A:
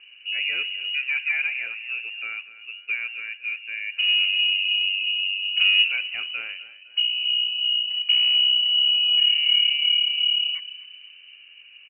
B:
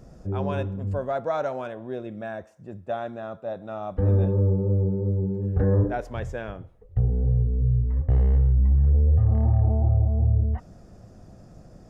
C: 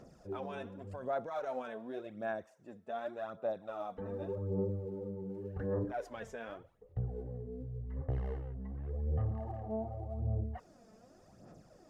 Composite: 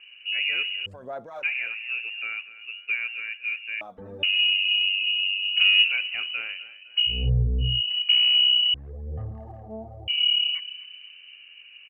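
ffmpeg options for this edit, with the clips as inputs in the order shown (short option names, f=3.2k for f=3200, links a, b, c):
-filter_complex "[2:a]asplit=3[a][b][c];[0:a]asplit=5[d][e][f][g][h];[d]atrim=end=0.862[i];[a]atrim=start=0.858:end=1.432[j];[e]atrim=start=1.428:end=3.812[k];[b]atrim=start=3.808:end=4.232[l];[f]atrim=start=4.228:end=7.3[m];[1:a]atrim=start=7.06:end=7.82[n];[g]atrim=start=7.58:end=8.742[o];[c]atrim=start=8.738:end=10.082[p];[h]atrim=start=10.078[q];[i][j]acrossfade=d=0.004:c1=hsin:c2=hsin[r];[r][k]acrossfade=d=0.004:c1=hsin:c2=hsin[s];[s][l]acrossfade=d=0.004:c1=hsin:c2=hsin[t];[t][m]acrossfade=d=0.004:c1=hsin:c2=hsin[u];[u][n]acrossfade=d=0.24:c1=tri:c2=tri[v];[v][o]acrossfade=d=0.24:c1=tri:c2=tri[w];[w][p]acrossfade=d=0.004:c1=hsin:c2=hsin[x];[x][q]acrossfade=d=0.004:c1=hsin:c2=hsin"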